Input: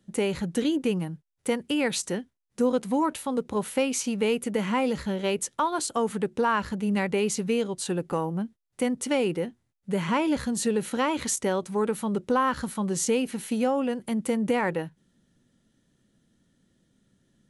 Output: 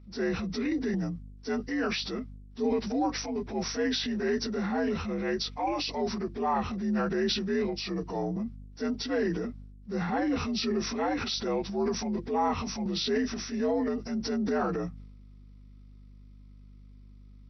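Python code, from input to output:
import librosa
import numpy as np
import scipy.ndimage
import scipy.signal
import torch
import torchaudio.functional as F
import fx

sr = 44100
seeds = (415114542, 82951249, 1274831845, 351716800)

y = fx.partial_stretch(x, sr, pct=83)
y = fx.add_hum(y, sr, base_hz=50, snr_db=20)
y = fx.transient(y, sr, attack_db=-4, sustain_db=7)
y = F.gain(torch.from_numpy(y), -2.0).numpy()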